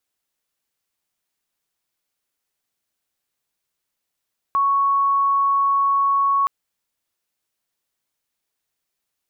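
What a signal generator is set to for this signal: tone sine 1.11 kHz -15 dBFS 1.92 s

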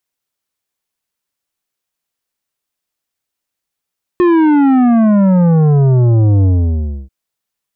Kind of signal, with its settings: sub drop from 360 Hz, over 2.89 s, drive 10.5 dB, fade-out 0.65 s, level -8 dB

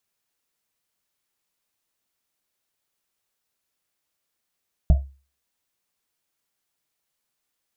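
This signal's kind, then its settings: Risset drum, pitch 68 Hz, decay 0.35 s, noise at 650 Hz, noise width 120 Hz, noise 10%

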